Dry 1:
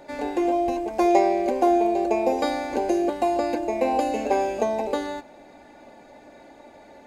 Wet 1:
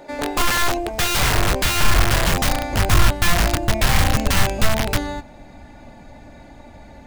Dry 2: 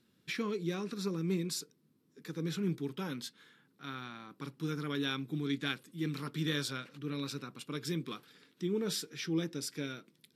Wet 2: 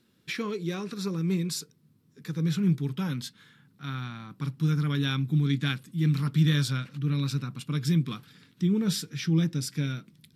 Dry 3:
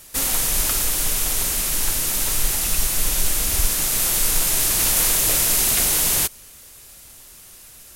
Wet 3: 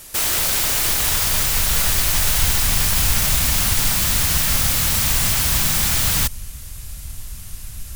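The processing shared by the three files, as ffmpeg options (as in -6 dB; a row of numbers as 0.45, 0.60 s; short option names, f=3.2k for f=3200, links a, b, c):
-af "aeval=exprs='(mod(8.91*val(0)+1,2)-1)/8.91':c=same,asubboost=boost=11.5:cutoff=120,volume=4.5dB"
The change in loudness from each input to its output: +4.0, +9.0, +1.5 LU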